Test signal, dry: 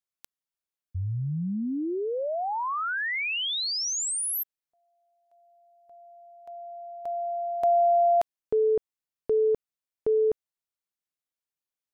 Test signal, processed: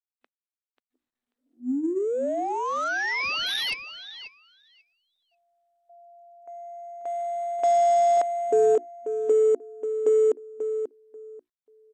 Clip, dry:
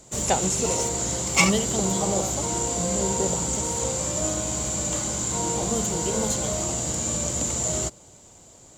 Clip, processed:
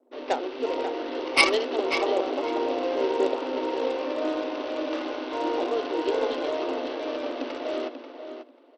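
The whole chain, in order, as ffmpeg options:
ffmpeg -i in.wav -af "bandreject=frequency=60:width_type=h:width=6,bandreject=frequency=120:width_type=h:width=6,bandreject=frequency=180:width_type=h:width=6,bandreject=frequency=240:width_type=h:width=6,bandreject=frequency=300:width_type=h:width=6,bandreject=frequency=360:width_type=h:width=6,anlmdn=0.01,afftfilt=real='re*between(b*sr/4096,240,4800)':imag='im*between(b*sr/4096,240,4800)':win_size=4096:overlap=0.75,equalizer=frequency=860:width_type=o:width=1.2:gain=-3.5,dynaudnorm=framelen=200:gausssize=9:maxgain=4.5dB,aecho=1:1:538|1076|1614:0.376|0.0714|0.0136,acrusher=samples=6:mix=1:aa=0.000001,adynamicsmooth=sensitivity=2:basefreq=1900" -ar 32000 -c:a sbc -b:a 64k out.sbc

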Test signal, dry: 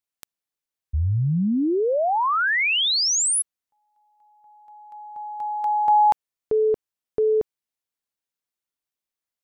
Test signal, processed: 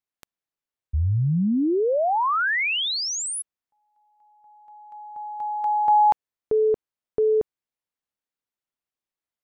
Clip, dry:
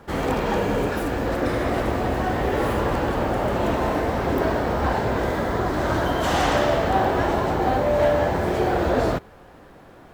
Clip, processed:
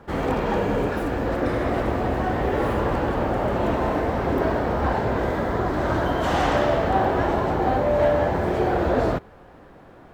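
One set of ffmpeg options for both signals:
ffmpeg -i in.wav -af "highshelf=frequency=3700:gain=-9" out.wav

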